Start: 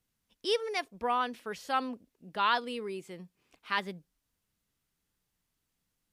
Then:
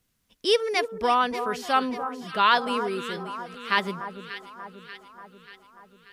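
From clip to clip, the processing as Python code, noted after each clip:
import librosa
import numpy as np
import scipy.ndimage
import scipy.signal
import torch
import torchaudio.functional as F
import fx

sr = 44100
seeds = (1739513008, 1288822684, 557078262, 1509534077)

y = fx.notch(x, sr, hz=870.0, q=12.0)
y = fx.echo_alternate(y, sr, ms=293, hz=1400.0, feedback_pct=74, wet_db=-9.5)
y = F.gain(torch.from_numpy(y), 8.0).numpy()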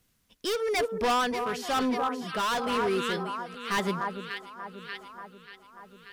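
y = np.clip(10.0 ** (25.5 / 20.0) * x, -1.0, 1.0) / 10.0 ** (25.5 / 20.0)
y = y * (1.0 - 0.39 / 2.0 + 0.39 / 2.0 * np.cos(2.0 * np.pi * 1.0 * (np.arange(len(y)) / sr)))
y = F.gain(torch.from_numpy(y), 3.5).numpy()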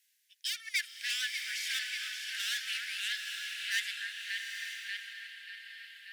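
y = scipy.signal.sosfilt(scipy.signal.butter(16, 1600.0, 'highpass', fs=sr, output='sos'), x)
y = fx.rev_bloom(y, sr, seeds[0], attack_ms=910, drr_db=3.0)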